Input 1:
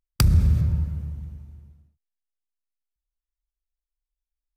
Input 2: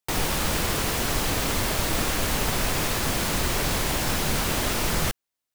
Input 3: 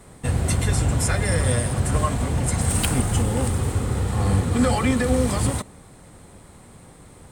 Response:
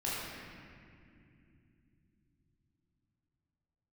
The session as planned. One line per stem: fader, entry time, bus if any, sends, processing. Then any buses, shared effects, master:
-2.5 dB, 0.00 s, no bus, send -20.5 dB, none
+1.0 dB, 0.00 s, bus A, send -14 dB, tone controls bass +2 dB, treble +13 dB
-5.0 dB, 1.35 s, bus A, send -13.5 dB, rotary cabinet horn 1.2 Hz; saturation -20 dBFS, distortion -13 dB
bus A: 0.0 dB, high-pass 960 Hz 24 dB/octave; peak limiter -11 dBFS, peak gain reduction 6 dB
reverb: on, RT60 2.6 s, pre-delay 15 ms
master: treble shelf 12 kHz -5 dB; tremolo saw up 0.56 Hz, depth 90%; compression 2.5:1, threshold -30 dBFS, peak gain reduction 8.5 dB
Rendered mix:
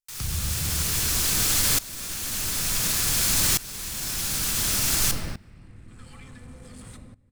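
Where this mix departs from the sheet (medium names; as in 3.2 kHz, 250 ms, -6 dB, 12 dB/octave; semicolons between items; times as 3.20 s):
stem 3 -5.0 dB -> -13.0 dB; master: missing compression 2.5:1, threshold -30 dBFS, peak gain reduction 8.5 dB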